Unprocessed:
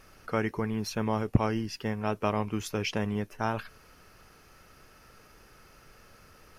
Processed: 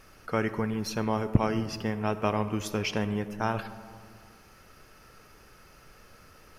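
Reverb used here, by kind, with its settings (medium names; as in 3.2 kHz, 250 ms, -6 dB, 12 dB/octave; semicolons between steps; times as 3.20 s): algorithmic reverb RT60 2 s, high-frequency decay 0.35×, pre-delay 15 ms, DRR 12 dB; trim +1 dB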